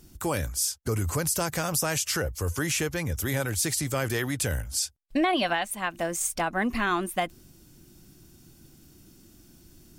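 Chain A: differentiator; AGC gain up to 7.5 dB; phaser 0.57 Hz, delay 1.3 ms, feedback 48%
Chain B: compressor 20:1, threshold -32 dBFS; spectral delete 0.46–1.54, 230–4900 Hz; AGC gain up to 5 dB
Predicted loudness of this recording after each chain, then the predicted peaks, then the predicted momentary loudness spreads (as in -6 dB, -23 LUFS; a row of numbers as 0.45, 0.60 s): -22.5, -31.5 LUFS; -3.5, -16.0 dBFS; 13, 19 LU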